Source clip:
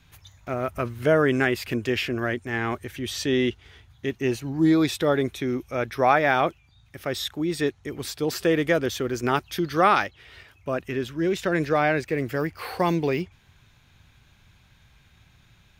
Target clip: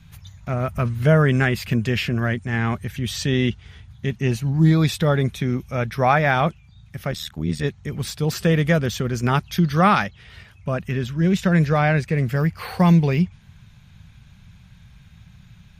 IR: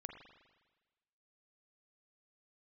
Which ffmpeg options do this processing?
-filter_complex "[0:a]lowshelf=f=240:t=q:w=3:g=7,asplit=3[a][b][c];[a]afade=t=out:st=7.1:d=0.02[d];[b]tremolo=f=78:d=0.919,afade=t=in:st=7.1:d=0.02,afade=t=out:st=7.63:d=0.02[e];[c]afade=t=in:st=7.63:d=0.02[f];[d][e][f]amix=inputs=3:normalize=0,volume=2.5dB" -ar 48000 -c:a libmp3lame -b:a 56k

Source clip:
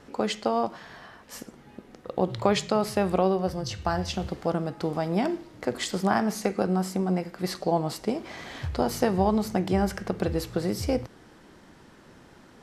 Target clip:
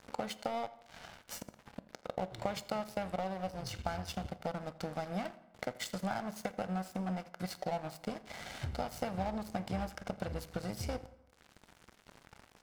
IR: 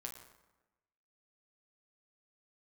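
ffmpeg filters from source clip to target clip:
-filter_complex "[0:a]aecho=1:1:1.4:0.75,acompressor=threshold=-44dB:ratio=3,aeval=exprs='sgn(val(0))*max(abs(val(0))-0.00473,0)':c=same,asplit=2[a][b];[b]adelay=84,lowpass=f=4.5k:p=1,volume=-20dB,asplit=2[c][d];[d]adelay=84,lowpass=f=4.5k:p=1,volume=0.47,asplit=2[e][f];[f]adelay=84,lowpass=f=4.5k:p=1,volume=0.47,asplit=2[g][h];[h]adelay=84,lowpass=f=4.5k:p=1,volume=0.47[i];[a][c][e][g][i]amix=inputs=5:normalize=0,asplit=2[j][k];[1:a]atrim=start_sample=2205[l];[k][l]afir=irnorm=-1:irlink=0,volume=-6dB[m];[j][m]amix=inputs=2:normalize=0,volume=4dB"

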